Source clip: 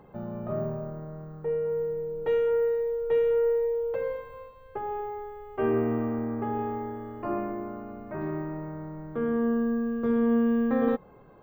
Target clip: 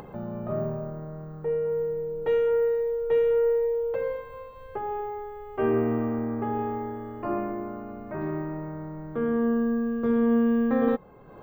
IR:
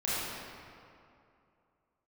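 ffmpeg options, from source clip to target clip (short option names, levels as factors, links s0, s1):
-af "acompressor=mode=upward:threshold=0.0141:ratio=2.5,volume=1.19"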